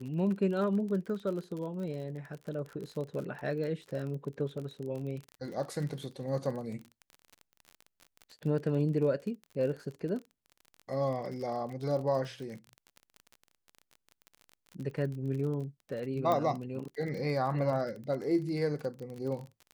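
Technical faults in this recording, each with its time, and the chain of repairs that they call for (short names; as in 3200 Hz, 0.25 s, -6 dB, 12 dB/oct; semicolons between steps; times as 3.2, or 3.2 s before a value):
crackle 36/s -38 dBFS
16.32 pop -18 dBFS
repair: de-click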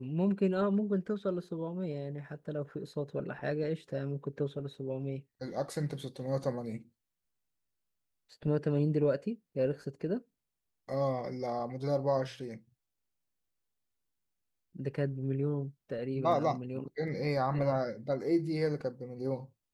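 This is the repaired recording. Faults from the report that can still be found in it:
16.32 pop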